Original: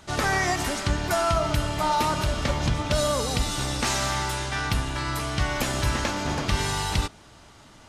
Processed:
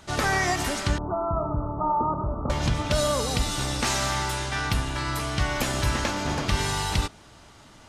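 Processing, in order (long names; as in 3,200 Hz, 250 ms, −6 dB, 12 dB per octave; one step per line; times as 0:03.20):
0:00.98–0:02.50: Chebyshev low-pass with heavy ripple 1,300 Hz, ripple 3 dB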